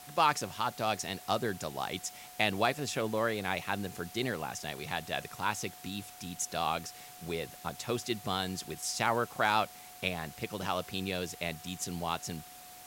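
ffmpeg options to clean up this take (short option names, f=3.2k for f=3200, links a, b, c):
-af "adeclick=t=4,bandreject=f=730:w=30,afwtdn=0.0028"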